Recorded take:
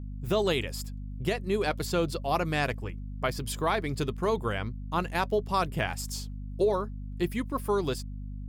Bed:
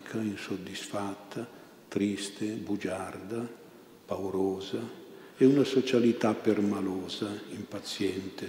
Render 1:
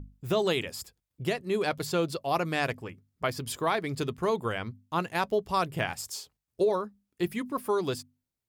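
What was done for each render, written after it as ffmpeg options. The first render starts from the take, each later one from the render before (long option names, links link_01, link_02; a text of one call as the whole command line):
ffmpeg -i in.wav -af "bandreject=frequency=50:width_type=h:width=6,bandreject=frequency=100:width_type=h:width=6,bandreject=frequency=150:width_type=h:width=6,bandreject=frequency=200:width_type=h:width=6,bandreject=frequency=250:width_type=h:width=6" out.wav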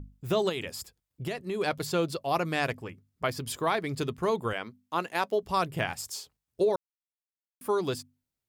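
ffmpeg -i in.wav -filter_complex "[0:a]asettb=1/sr,asplit=3[link_01][link_02][link_03];[link_01]atrim=end=0.494[link_04];[link_02]atrim=start=0.49:end=1.6,asetpts=PTS-STARTPTS,afade=type=in:duration=0.004:curve=qsin,afade=type=out:start_time=1.106:duration=0.004:curve=qsin,acompressor=threshold=-28dB:ratio=6:attack=3.2:release=140:knee=1:detection=peak[link_05];[link_03]atrim=start=1.596[link_06];[link_04][link_05]acrossfade=duration=0.004:curve1=hsin:curve2=qsin[link_07];[link_07][link_06]acrossfade=duration=0.004:curve1=qsin:curve2=hsin,asettb=1/sr,asplit=3[link_08][link_09][link_10];[link_08]atrim=end=4.534[link_11];[link_09]atrim=start=4.53:end=5.43,asetpts=PTS-STARTPTS,afade=type=in:duration=0.004:curve=qsin,afade=type=out:start_time=0.896:duration=0.004:curve=qsin,highpass=260[link_12];[link_10]atrim=start=5.426[link_13];[link_11][link_12]acrossfade=duration=0.004:curve1=hsin:curve2=qsin[link_14];[link_14][link_13]acrossfade=duration=0.004:curve1=qsin:curve2=hsin,asplit=3[link_15][link_16][link_17];[link_15]atrim=end=6.76,asetpts=PTS-STARTPTS,afade=type=out:start_time=6.756:duration=0.004:curve=hsin[link_18];[link_16]atrim=start=6.76:end=7.61,asetpts=PTS-STARTPTS,volume=0[link_19];[link_17]atrim=start=7.61,asetpts=PTS-STARTPTS,afade=type=in:duration=0.004:curve=hsin[link_20];[link_18][link_19][link_20]concat=n=3:v=0:a=1" out.wav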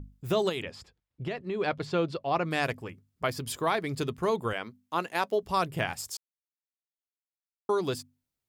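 ffmpeg -i in.wav -filter_complex "[0:a]asettb=1/sr,asplit=3[link_01][link_02][link_03];[link_01]atrim=end=0.624[link_04];[link_02]atrim=start=0.62:end=2.51,asetpts=PTS-STARTPTS,afade=type=in:duration=0.004:curve=qsin,afade=type=out:start_time=1.886:duration=0.004:curve=qsin,lowpass=3500[link_05];[link_03]atrim=start=2.506[link_06];[link_04][link_05]acrossfade=duration=0.004:curve1=hsin:curve2=qsin[link_07];[link_07][link_06]acrossfade=duration=0.004:curve1=qsin:curve2=hsin,asplit=3[link_08][link_09][link_10];[link_08]atrim=end=6.17,asetpts=PTS-STARTPTS,afade=type=out:start_time=6.166:duration=0.004:curve=hsin[link_11];[link_09]atrim=start=6.17:end=7.69,asetpts=PTS-STARTPTS,volume=0[link_12];[link_10]atrim=start=7.69,asetpts=PTS-STARTPTS,afade=type=in:duration=0.004:curve=hsin[link_13];[link_11][link_12][link_13]concat=n=3:v=0:a=1" out.wav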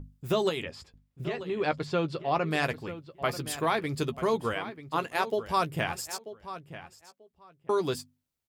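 ffmpeg -i in.wav -filter_complex "[0:a]asplit=2[link_01][link_02];[link_02]adelay=13,volume=-9.5dB[link_03];[link_01][link_03]amix=inputs=2:normalize=0,asplit=2[link_04][link_05];[link_05]adelay=938,lowpass=frequency=4000:poles=1,volume=-13dB,asplit=2[link_06][link_07];[link_07]adelay=938,lowpass=frequency=4000:poles=1,volume=0.18[link_08];[link_04][link_06][link_08]amix=inputs=3:normalize=0" out.wav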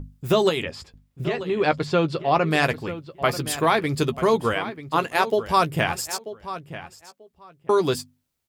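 ffmpeg -i in.wav -af "volume=7.5dB" out.wav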